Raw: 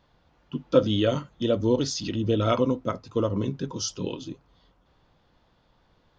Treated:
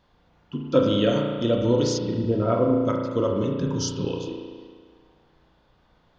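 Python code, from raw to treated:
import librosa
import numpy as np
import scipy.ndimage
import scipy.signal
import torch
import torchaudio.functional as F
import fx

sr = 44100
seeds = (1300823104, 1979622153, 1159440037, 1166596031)

y = fx.lowpass(x, sr, hz=1200.0, slope=12, at=(1.97, 2.8), fade=0.02)
y = fx.low_shelf(y, sr, hz=180.0, db=8.0, at=(3.56, 4.05))
y = fx.rev_spring(y, sr, rt60_s=1.7, pass_ms=(34,), chirp_ms=45, drr_db=0.5)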